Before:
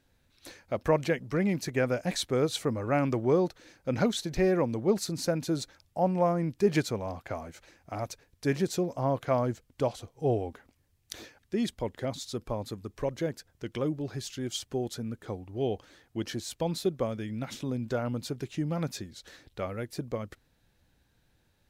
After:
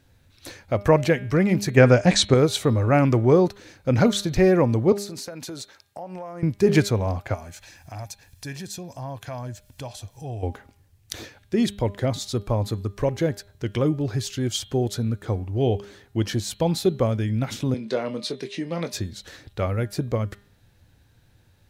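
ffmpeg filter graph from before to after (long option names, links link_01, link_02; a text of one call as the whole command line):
ffmpeg -i in.wav -filter_complex "[0:a]asettb=1/sr,asplit=3[link_01][link_02][link_03];[link_01]atrim=end=1.774[link_04];[link_02]atrim=start=1.77:end=2.34,asetpts=PTS-STARTPTS,afade=type=in:duration=0.004:curve=qsin,afade=type=out:start_time=0.566:duration=0.004:curve=qsin,lowpass=frequency=8200:width=0.5412,lowpass=frequency=8200:width=1.3066,acontrast=29[link_05];[link_03]atrim=start=2.336[link_06];[link_04][link_05]acrossfade=duration=0.004:curve1=hsin:curve2=qsin[link_07];[link_07][link_06]acrossfade=duration=0.004:curve1=qsin:curve2=hsin,asettb=1/sr,asplit=3[link_08][link_09][link_10];[link_08]atrim=end=4.924[link_11];[link_09]atrim=start=4.92:end=6.43,asetpts=PTS-STARTPTS,afade=type=in:duration=0.004:curve=qsin,afade=type=out:start_time=1.506:duration=0.004:curve=qsin,highpass=frequency=600:poles=1,acompressor=threshold=-39dB:ratio=10:attack=3.2:release=140:knee=1:detection=peak[link_12];[link_10]atrim=start=6.426[link_13];[link_11][link_12]acrossfade=duration=0.004:curve1=hsin:curve2=qsin[link_14];[link_14][link_13]acrossfade=duration=0.004:curve1=qsin:curve2=hsin,asettb=1/sr,asplit=3[link_15][link_16][link_17];[link_15]atrim=end=7.344[link_18];[link_16]atrim=start=7.34:end=10.43,asetpts=PTS-STARTPTS,afade=type=in:duration=0.004:curve=qsin,afade=type=out:start_time=3.086:duration=0.004:curve=qsin,highshelf=frequency=2100:gain=11.5,aecho=1:1:1.2:0.45,atrim=end_sample=136269,acompressor=threshold=-54dB:ratio=2:attack=3.2:release=140:knee=1:detection=peak[link_19];[link_17]atrim=start=10.426[link_20];[link_18][link_19]acrossfade=duration=0.004:curve1=hsin:curve2=qsin[link_21];[link_21][link_20]acrossfade=duration=0.004:curve1=qsin:curve2=hsin,asettb=1/sr,asplit=3[link_22][link_23][link_24];[link_22]atrim=end=17.744[link_25];[link_23]atrim=start=17.74:end=18.93,asetpts=PTS-STARTPTS,afade=type=in:duration=0.004:curve=qsin,afade=type=out:start_time=1.186:duration=0.004:curve=qsin,highpass=frequency=220:width=0.5412,highpass=frequency=220:width=1.3066,equalizer=frequency=290:width_type=q:width=4:gain=-8,equalizer=frequency=780:width_type=q:width=4:gain=-6,equalizer=frequency=1400:width_type=q:width=4:gain=-8,equalizer=frequency=2000:width_type=q:width=4:gain=4,equalizer=frequency=4000:width_type=q:width=4:gain=6,equalizer=frequency=7200:width_type=q:width=4:gain=-8,lowpass=frequency=9700:width=0.5412,lowpass=frequency=9700:width=1.3066,asplit=2[link_26][link_27];[link_27]adelay=23,volume=-9dB[link_28];[link_26][link_28]amix=inputs=2:normalize=0,atrim=end_sample=52479[link_29];[link_24]atrim=start=18.926[link_30];[link_25][link_29]acrossfade=duration=0.004:curve1=hsin:curve2=qsin[link_31];[link_31][link_30]acrossfade=duration=0.004:curve1=qsin:curve2=hsin,equalizer=frequency=100:width=1.8:gain=9,bandreject=frequency=202.1:width_type=h:width=4,bandreject=frequency=404.2:width_type=h:width=4,bandreject=frequency=606.3:width_type=h:width=4,bandreject=frequency=808.4:width_type=h:width=4,bandreject=frequency=1010.5:width_type=h:width=4,bandreject=frequency=1212.6:width_type=h:width=4,bandreject=frequency=1414.7:width_type=h:width=4,bandreject=frequency=1616.8:width_type=h:width=4,bandreject=frequency=1818.9:width_type=h:width=4,bandreject=frequency=2021:width_type=h:width=4,bandreject=frequency=2223.1:width_type=h:width=4,bandreject=frequency=2425.2:width_type=h:width=4,bandreject=frequency=2627.3:width_type=h:width=4,bandreject=frequency=2829.4:width_type=h:width=4,bandreject=frequency=3031.5:width_type=h:width=4,bandreject=frequency=3233.6:width_type=h:width=4,bandreject=frequency=3435.7:width_type=h:width=4,bandreject=frequency=3637.8:width_type=h:width=4,bandreject=frequency=3839.9:width_type=h:width=4,bandreject=frequency=4042:width_type=h:width=4,bandreject=frequency=4244.1:width_type=h:width=4,volume=7.5dB" out.wav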